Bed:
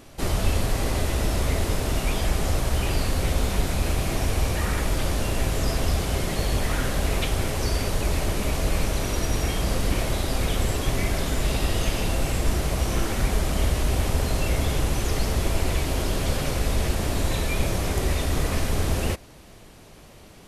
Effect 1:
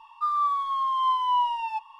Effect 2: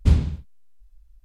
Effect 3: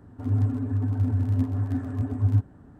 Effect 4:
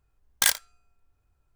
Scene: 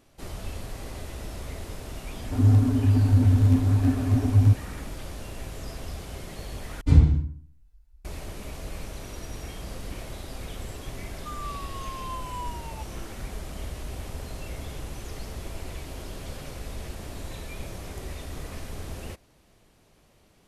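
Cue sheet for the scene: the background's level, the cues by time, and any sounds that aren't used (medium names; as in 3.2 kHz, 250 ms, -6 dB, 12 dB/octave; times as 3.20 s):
bed -13 dB
2.13 s: add 3 -9.5 dB + loudness maximiser +15 dB
6.81 s: replace with 2 -9.5 dB + FDN reverb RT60 0.5 s, low-frequency decay 1.2×, high-frequency decay 0.5×, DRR -8.5 dB
11.04 s: add 1 -13.5 dB
not used: 4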